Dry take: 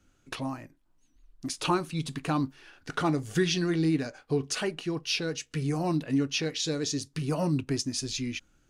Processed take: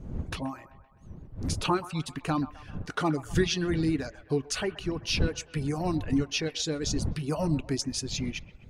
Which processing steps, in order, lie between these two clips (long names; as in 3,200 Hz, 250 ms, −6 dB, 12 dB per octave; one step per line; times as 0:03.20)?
wind on the microphone 140 Hz −36 dBFS
reverb reduction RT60 0.61 s
delay with a band-pass on its return 129 ms, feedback 55%, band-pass 1,100 Hz, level −14.5 dB